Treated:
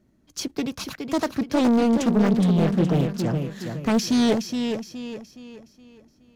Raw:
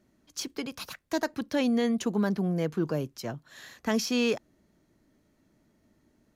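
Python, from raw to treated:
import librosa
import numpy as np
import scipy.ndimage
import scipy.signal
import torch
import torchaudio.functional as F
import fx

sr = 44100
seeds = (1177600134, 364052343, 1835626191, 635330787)

y = fx.rattle_buzz(x, sr, strikes_db=-31.0, level_db=-34.0)
y = fx.low_shelf(y, sr, hz=350.0, db=9.0)
y = fx.leveller(y, sr, passes=1)
y = fx.echo_feedback(y, sr, ms=418, feedback_pct=39, wet_db=-6.5)
y = fx.doppler_dist(y, sr, depth_ms=0.63)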